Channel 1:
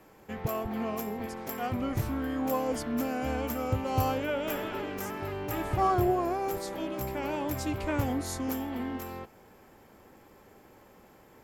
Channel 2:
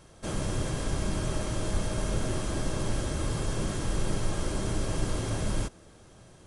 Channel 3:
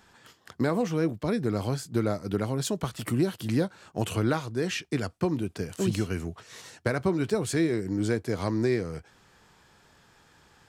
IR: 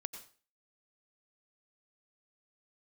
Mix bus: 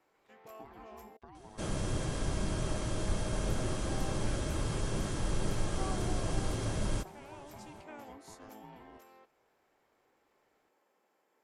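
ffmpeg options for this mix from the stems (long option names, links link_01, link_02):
-filter_complex "[0:a]highpass=390,volume=-16.5dB,asplit=3[link_01][link_02][link_03];[link_01]atrim=end=1.17,asetpts=PTS-STARTPTS,afade=type=out:start_time=1.166:duration=0.004:curve=hsin[link_04];[link_02]atrim=start=1.17:end=3.35,asetpts=PTS-STARTPTS,volume=0[link_05];[link_03]atrim=start=3.35,asetpts=PTS-STARTPTS,afade=type=in:duration=0.004:curve=hsin[link_06];[link_04][link_05][link_06]concat=n=3:v=0:a=1[link_07];[1:a]adelay=1350,volume=-3.5dB[link_08];[2:a]highshelf=frequency=4200:gain=-12,acompressor=threshold=-31dB:ratio=12,aeval=exprs='val(0)*sin(2*PI*540*n/s)':channel_layout=same,volume=-15.5dB[link_09];[link_07][link_08][link_09]amix=inputs=3:normalize=0,lowpass=11000"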